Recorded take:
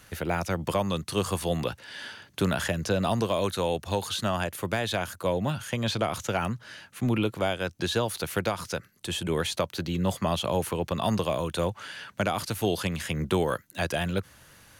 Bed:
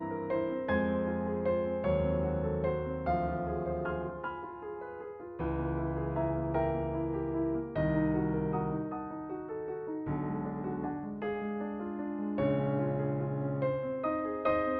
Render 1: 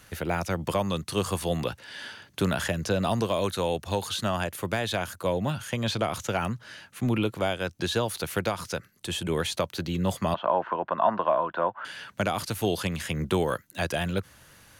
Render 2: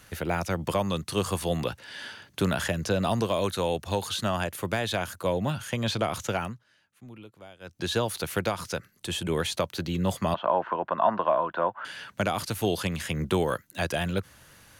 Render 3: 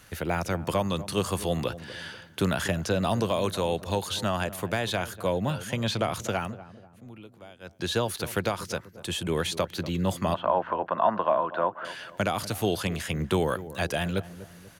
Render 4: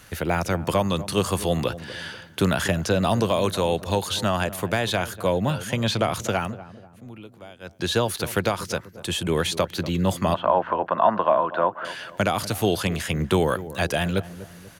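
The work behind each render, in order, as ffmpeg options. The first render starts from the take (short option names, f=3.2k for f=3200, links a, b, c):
-filter_complex "[0:a]asettb=1/sr,asplit=3[a][b][c];[a]atrim=end=10.344[d];[b]atrim=start=10.34:end=11.85,asetpts=PTS-STARTPTS,afade=t=in:d=0.004:c=qsin,afade=t=out:st=1.506:d=0.004:c=qsin,highpass=310,equalizer=f=440:t=q:w=4:g=-6,equalizer=f=660:t=q:w=4:g=7,equalizer=f=1k:t=q:w=4:g=10,equalizer=f=1.5k:t=q:w=4:g=8,equalizer=f=2.3k:t=q:w=4:g=-8,lowpass=f=2.4k:w=0.5412,lowpass=f=2.4k:w=1.3066[e];[c]atrim=start=11.846[f];[d][e]acrossfade=d=0.004:c1=hsin:c2=qsin[g];[g][f]acrossfade=d=0.004:c1=qsin:c2=hsin"
-filter_complex "[0:a]asplit=3[a][b][c];[a]atrim=end=6.64,asetpts=PTS-STARTPTS,afade=t=out:st=6.32:d=0.32:silence=0.0944061[d];[b]atrim=start=6.64:end=7.6,asetpts=PTS-STARTPTS,volume=-20.5dB[e];[c]atrim=start=7.6,asetpts=PTS-STARTPTS,afade=t=in:d=0.32:silence=0.0944061[f];[d][e][f]concat=n=3:v=0:a=1"
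-filter_complex "[0:a]asplit=2[a][b];[b]adelay=243,lowpass=f=870:p=1,volume=-14dB,asplit=2[c][d];[d]adelay=243,lowpass=f=870:p=1,volume=0.48,asplit=2[e][f];[f]adelay=243,lowpass=f=870:p=1,volume=0.48,asplit=2[g][h];[h]adelay=243,lowpass=f=870:p=1,volume=0.48,asplit=2[i][j];[j]adelay=243,lowpass=f=870:p=1,volume=0.48[k];[a][c][e][g][i][k]amix=inputs=6:normalize=0"
-af "volume=4.5dB"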